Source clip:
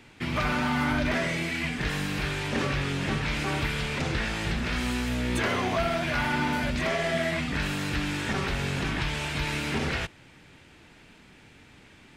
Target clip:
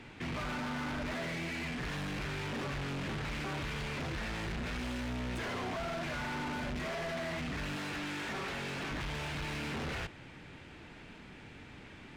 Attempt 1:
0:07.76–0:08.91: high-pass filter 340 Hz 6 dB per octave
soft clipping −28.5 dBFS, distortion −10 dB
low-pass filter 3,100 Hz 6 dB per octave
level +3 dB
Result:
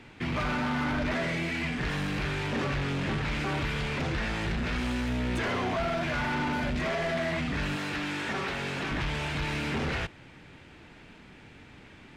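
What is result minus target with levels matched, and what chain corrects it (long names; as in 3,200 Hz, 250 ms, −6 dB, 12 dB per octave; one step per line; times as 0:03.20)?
soft clipping: distortion −6 dB
0:07.76–0:08.91: high-pass filter 340 Hz 6 dB per octave
soft clipping −38.5 dBFS, distortion −5 dB
low-pass filter 3,100 Hz 6 dB per octave
level +3 dB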